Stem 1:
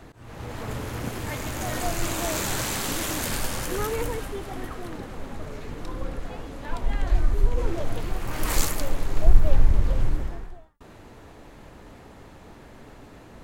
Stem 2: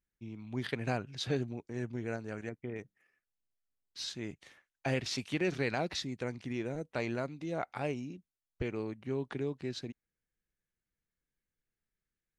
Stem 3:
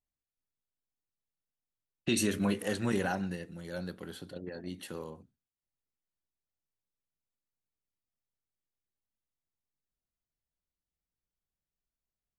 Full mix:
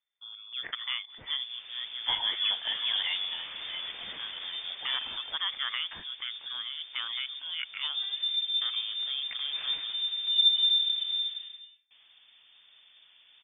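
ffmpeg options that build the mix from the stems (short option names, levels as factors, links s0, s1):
-filter_complex "[0:a]adelay=1100,volume=0.224[s0];[1:a]equalizer=f=1400:t=o:w=0.88:g=5.5,volume=0.841[s1];[2:a]volume=1[s2];[s0][s1][s2]amix=inputs=3:normalize=0,lowpass=f=3100:t=q:w=0.5098,lowpass=f=3100:t=q:w=0.6013,lowpass=f=3100:t=q:w=0.9,lowpass=f=3100:t=q:w=2.563,afreqshift=-3600"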